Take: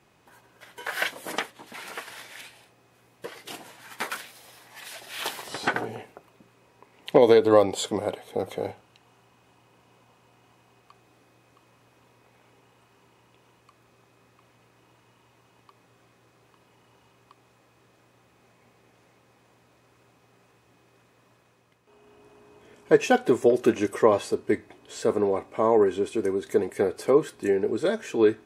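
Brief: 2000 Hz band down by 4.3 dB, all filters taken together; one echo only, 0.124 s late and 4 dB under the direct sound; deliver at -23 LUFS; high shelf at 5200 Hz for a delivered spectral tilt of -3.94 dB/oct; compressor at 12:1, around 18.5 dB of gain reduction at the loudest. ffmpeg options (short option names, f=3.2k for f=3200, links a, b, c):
-af "equalizer=f=2k:t=o:g=-5.5,highshelf=f=5.2k:g=-3.5,acompressor=threshold=-31dB:ratio=12,aecho=1:1:124:0.631,volume=14dB"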